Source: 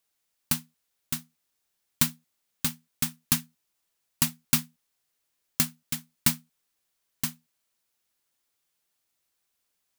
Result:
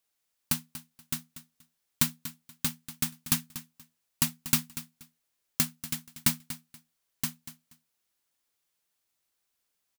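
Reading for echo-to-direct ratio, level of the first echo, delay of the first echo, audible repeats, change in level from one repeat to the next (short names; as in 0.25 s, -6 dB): -14.0 dB, -14.0 dB, 0.239 s, 2, -14.0 dB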